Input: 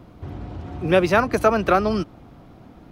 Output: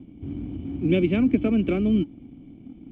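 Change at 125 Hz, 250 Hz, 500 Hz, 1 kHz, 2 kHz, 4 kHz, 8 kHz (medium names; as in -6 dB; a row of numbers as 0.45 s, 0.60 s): 0.0 dB, +4.0 dB, -7.5 dB, -22.0 dB, -11.5 dB, -6.5 dB, under -25 dB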